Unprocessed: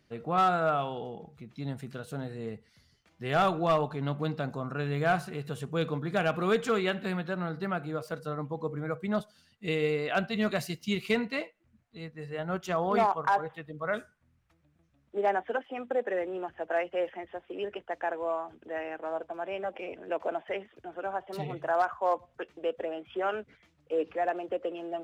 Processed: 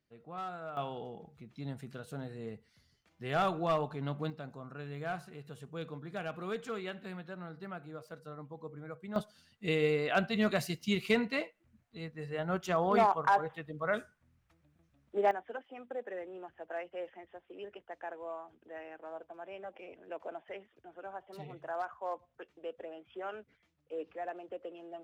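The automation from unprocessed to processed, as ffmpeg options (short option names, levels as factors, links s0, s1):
-af "asetnsamples=n=441:p=0,asendcmd='0.77 volume volume -5dB;4.3 volume volume -11.5dB;9.16 volume volume -1dB;15.31 volume volume -10.5dB',volume=0.158"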